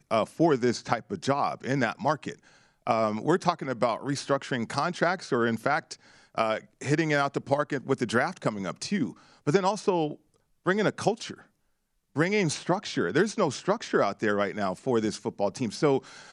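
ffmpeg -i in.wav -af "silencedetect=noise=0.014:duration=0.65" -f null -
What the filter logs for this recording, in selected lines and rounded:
silence_start: 11.34
silence_end: 12.16 | silence_duration: 0.82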